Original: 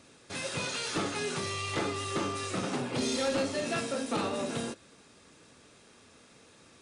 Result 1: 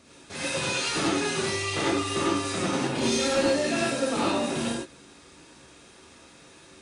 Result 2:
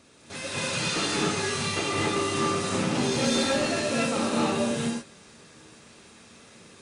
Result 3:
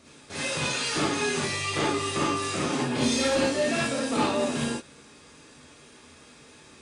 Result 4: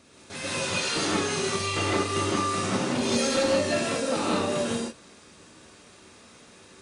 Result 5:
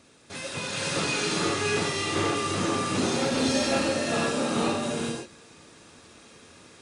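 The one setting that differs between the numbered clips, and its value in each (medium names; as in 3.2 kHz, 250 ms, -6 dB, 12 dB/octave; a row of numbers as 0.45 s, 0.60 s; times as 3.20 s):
gated-style reverb, gate: 130 ms, 310 ms, 90 ms, 200 ms, 540 ms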